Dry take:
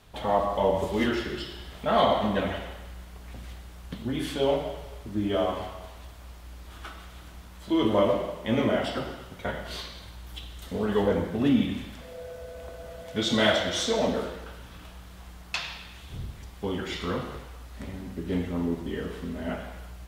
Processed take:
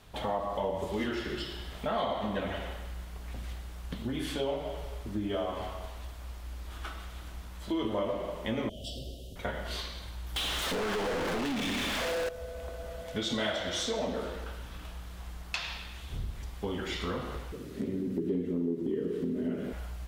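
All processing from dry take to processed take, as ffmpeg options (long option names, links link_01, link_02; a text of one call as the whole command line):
ffmpeg -i in.wav -filter_complex "[0:a]asettb=1/sr,asplit=3[link_01][link_02][link_03];[link_01]atrim=end=8.694[link_04];[link_02]atrim=start=8.69:end=9.36,asetpts=PTS-STARTPTS,afade=type=in:duration=0.004:curve=qsin,afade=type=out:start_time=0.666:duration=0.004:curve=qsin,acrossover=split=130|3000[link_05][link_06][link_07];[link_06]acompressor=threshold=-47dB:ratio=3:attack=3.2:release=140:knee=2.83:detection=peak[link_08];[link_05][link_08][link_07]amix=inputs=3:normalize=0,asuperstop=centerf=1400:order=12:qfactor=0.63[link_09];[link_03]atrim=start=9.356[link_10];[link_04][link_09]acrossfade=duration=0.004:curve1=hsin:curve2=qsin[link_11];[link_11][link_10]acrossfade=duration=0.004:curve1=qsin:curve2=hsin,asettb=1/sr,asplit=3[link_12][link_13][link_14];[link_12]atrim=end=10.364[link_15];[link_13]atrim=start=10.36:end=12.29,asetpts=PTS-STARTPTS,afade=type=in:duration=0.004:curve=qsin,afade=type=out:start_time=1.926:duration=0.004:curve=qsin,acompressor=threshold=-29dB:ratio=3:attack=3.2:release=140:knee=1:detection=peak,asplit=2[link_16][link_17];[link_17]highpass=frequency=720:poles=1,volume=38dB,asoftclip=type=tanh:threshold=-21dB[link_18];[link_16][link_18]amix=inputs=2:normalize=0,lowpass=frequency=4600:poles=1,volume=-6dB[link_19];[link_14]atrim=start=12.286[link_20];[link_15][link_19]acrossfade=duration=0.004:curve1=hsin:curve2=qsin[link_21];[link_21][link_20]acrossfade=duration=0.004:curve1=qsin:curve2=hsin,asettb=1/sr,asplit=3[link_22][link_23][link_24];[link_22]atrim=end=17.524[link_25];[link_23]atrim=start=17.52:end=19.73,asetpts=PTS-STARTPTS,afade=type=in:duration=0.004:curve=qsin,afade=type=out:start_time=2.206:duration=0.004:curve=qsin,highpass=frequency=120:width=0.5412,highpass=frequency=120:width=1.3066,lowshelf=frequency=550:width_type=q:width=3:gain=11.5,acompressor=threshold=-28dB:ratio=1.5:attack=3.2:release=140:knee=1:detection=peak[link_26];[link_24]atrim=start=19.726[link_27];[link_25][link_26]acrossfade=duration=0.004:curve1=hsin:curve2=qsin[link_28];[link_28][link_27]acrossfade=duration=0.004:curve1=qsin:curve2=hsin,asubboost=boost=2.5:cutoff=60,acompressor=threshold=-31dB:ratio=3" out.wav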